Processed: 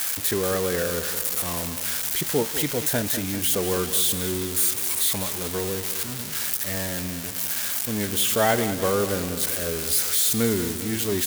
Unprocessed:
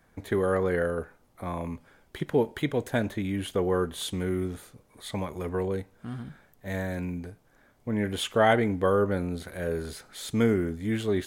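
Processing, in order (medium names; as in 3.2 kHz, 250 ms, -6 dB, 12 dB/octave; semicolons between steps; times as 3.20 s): zero-crossing glitches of -15.5 dBFS; on a send: feedback delay 198 ms, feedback 59%, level -12 dB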